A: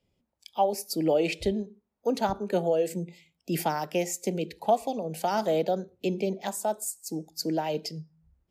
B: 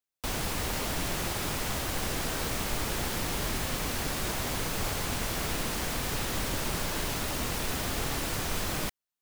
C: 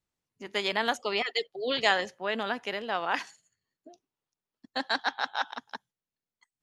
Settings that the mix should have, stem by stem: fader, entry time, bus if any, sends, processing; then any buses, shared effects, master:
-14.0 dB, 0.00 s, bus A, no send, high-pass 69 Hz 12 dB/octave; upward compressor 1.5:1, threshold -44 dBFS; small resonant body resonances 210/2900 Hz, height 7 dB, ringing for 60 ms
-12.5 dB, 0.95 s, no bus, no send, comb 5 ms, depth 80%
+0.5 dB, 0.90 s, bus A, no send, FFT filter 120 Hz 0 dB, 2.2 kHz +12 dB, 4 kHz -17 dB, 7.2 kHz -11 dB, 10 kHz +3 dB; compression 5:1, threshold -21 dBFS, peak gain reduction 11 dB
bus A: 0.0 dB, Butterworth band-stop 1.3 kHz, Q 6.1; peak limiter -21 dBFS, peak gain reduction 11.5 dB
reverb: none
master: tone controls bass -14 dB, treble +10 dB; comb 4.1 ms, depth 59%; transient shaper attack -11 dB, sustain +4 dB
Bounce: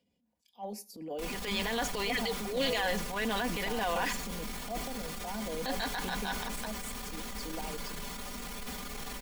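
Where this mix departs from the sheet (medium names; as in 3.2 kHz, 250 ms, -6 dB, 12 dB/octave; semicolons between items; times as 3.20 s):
stem C: missing FFT filter 120 Hz 0 dB, 2.2 kHz +12 dB, 4 kHz -17 dB, 7.2 kHz -11 dB, 10 kHz +3 dB; master: missing tone controls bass -14 dB, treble +10 dB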